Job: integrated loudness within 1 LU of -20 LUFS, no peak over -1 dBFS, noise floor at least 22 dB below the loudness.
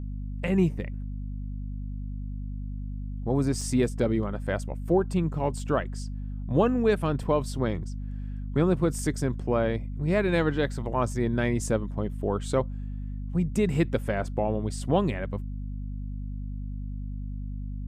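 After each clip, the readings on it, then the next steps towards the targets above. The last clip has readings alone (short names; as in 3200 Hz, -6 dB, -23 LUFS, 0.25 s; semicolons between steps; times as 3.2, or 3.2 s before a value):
dropouts 1; longest dropout 4.0 ms; hum 50 Hz; harmonics up to 250 Hz; hum level -31 dBFS; loudness -29.0 LUFS; peak -10.5 dBFS; loudness target -20.0 LUFS
-> interpolate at 3.61, 4 ms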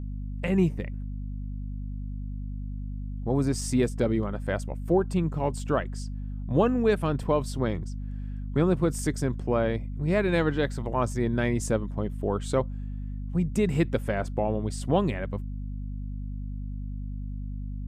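dropouts 0; hum 50 Hz; harmonics up to 250 Hz; hum level -31 dBFS
-> de-hum 50 Hz, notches 5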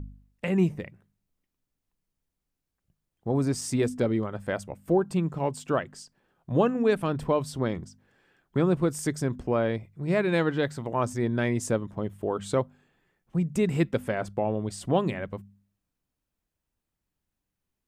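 hum none; loudness -28.0 LUFS; peak -11.0 dBFS; loudness target -20.0 LUFS
-> gain +8 dB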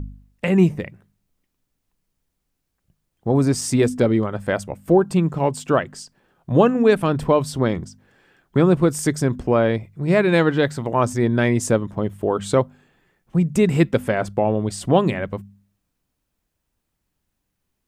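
loudness -20.0 LUFS; peak -3.0 dBFS; noise floor -77 dBFS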